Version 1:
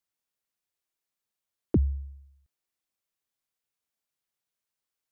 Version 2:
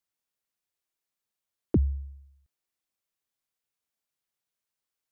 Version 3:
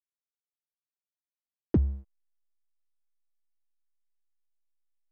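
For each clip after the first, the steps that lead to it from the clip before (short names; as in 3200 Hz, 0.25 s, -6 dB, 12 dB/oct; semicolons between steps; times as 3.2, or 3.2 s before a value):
nothing audible
backlash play -30 dBFS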